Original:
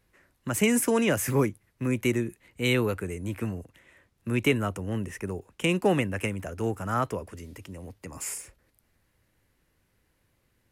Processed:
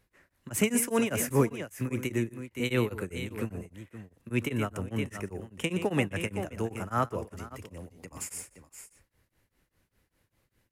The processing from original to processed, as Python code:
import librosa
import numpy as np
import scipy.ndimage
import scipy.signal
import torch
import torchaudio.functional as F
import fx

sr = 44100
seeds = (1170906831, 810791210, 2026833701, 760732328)

y = fx.echo_multitap(x, sr, ms=(121, 518), db=(-14.0, -12.5))
y = y * np.abs(np.cos(np.pi * 5.0 * np.arange(len(y)) / sr))